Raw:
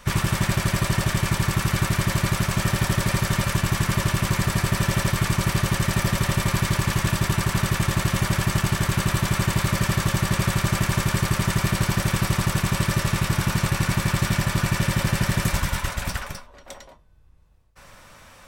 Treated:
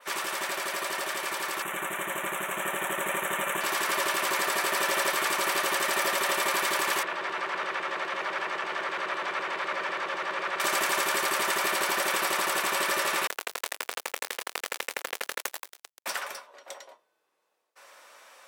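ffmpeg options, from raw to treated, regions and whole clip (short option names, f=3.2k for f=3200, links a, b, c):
-filter_complex "[0:a]asettb=1/sr,asplit=3[a][b][c];[a]atrim=end=1.624[d];[b]atrim=start=1.62:end=3.61,asetpts=PTS-STARTPTS,afade=t=in:d=0.004:c=qsin,afade=t=out:st=1.986:d=0.004:c=qsin,aeval=exprs='if(lt(val(0),0),0.708*val(0),val(0))':c=same,asuperstop=centerf=4800:order=4:qfactor=1.3,equalizer=f=170:t=o:w=0.83:g=11[e];[c]atrim=start=3.606[f];[d][e]acrossfade=d=0.004:c1=hsin:c2=qsin[g];[g][f]acrossfade=d=0.004:c1=qsin:c2=hsin,asettb=1/sr,asplit=3[h][i][j];[h]atrim=end=7.034[k];[i]atrim=start=7.03:end=10.6,asetpts=PTS-STARTPTS,afade=t=in:d=0.004:c=qsin,afade=t=out:st=3.566:d=0.004:c=qsin,lowpass=2.7k,acompressor=threshold=-22dB:ratio=6:attack=3.2:release=140:knee=1:detection=peak,volume=20.5dB,asoftclip=hard,volume=-20.5dB[l];[j]atrim=start=10.596[m];[k][l]acrossfade=d=0.004:c1=hsin:c2=qsin[n];[n][m]acrossfade=d=0.004:c1=qsin:c2=hsin,asettb=1/sr,asplit=3[o][p][q];[o]atrim=end=13.274[r];[p]atrim=start=13.27:end=16.06,asetpts=PTS-STARTPTS,afade=t=in:d=0.004:c=qsin,afade=t=out:st=2.786:d=0.004:c=qsin,lowshelf=f=180:g=-10.5,acrusher=bits=2:mix=0:aa=0.5[s];[q]atrim=start=16.056[t];[r][s]acrossfade=d=0.004:c1=hsin:c2=qsin[u];[u][t]acrossfade=d=0.004:c1=qsin:c2=hsin,highpass=f=400:w=0.5412,highpass=f=400:w=1.3066,adynamicequalizer=threshold=0.00708:dfrequency=6000:dqfactor=0.95:tfrequency=6000:tqfactor=0.95:attack=5:release=100:ratio=0.375:range=2:mode=cutabove:tftype=bell,dynaudnorm=f=530:g=11:m=5dB,volume=-3dB"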